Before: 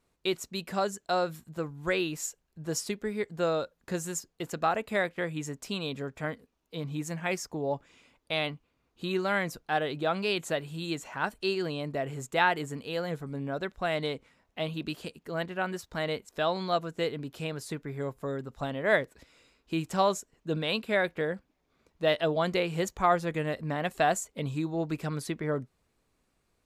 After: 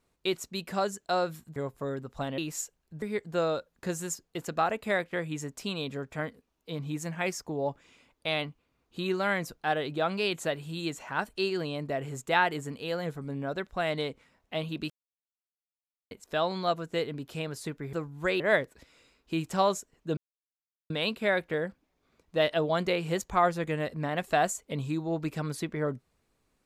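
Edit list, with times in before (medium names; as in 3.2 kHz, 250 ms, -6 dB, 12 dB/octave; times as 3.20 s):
1.56–2.03 s: swap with 17.98–18.80 s
2.67–3.07 s: delete
14.95–16.16 s: mute
20.57 s: insert silence 0.73 s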